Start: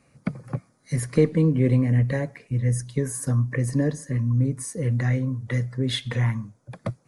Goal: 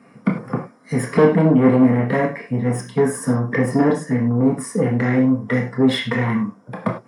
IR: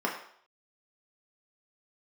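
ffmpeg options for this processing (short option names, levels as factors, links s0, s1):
-filter_complex "[0:a]asoftclip=type=tanh:threshold=0.0841[s0];[1:a]atrim=start_sample=2205,afade=t=out:st=0.16:d=0.01,atrim=end_sample=7497[s1];[s0][s1]afir=irnorm=-1:irlink=0,volume=1.5"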